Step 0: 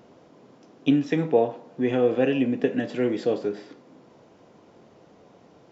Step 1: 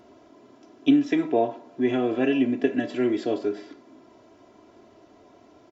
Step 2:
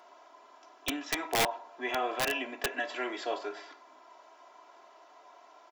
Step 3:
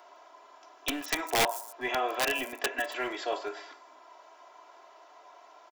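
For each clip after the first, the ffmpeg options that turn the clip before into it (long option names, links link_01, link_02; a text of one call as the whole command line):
ffmpeg -i in.wav -af "aecho=1:1:3:0.75,volume=-1.5dB" out.wav
ffmpeg -i in.wav -af "highpass=frequency=920:width_type=q:width=1.9,aeval=exprs='(mod(10.6*val(0)+1,2)-1)/10.6':channel_layout=same" out.wav
ffmpeg -i in.wav -filter_complex "[0:a]acrossover=split=240|6500[link_01][link_02][link_03];[link_01]acrusher=bits=5:dc=4:mix=0:aa=0.000001[link_04];[link_03]aecho=1:1:143|160|200|201|276:0.15|0.447|0.112|0.106|0.2[link_05];[link_04][link_02][link_05]amix=inputs=3:normalize=0,volume=2dB" out.wav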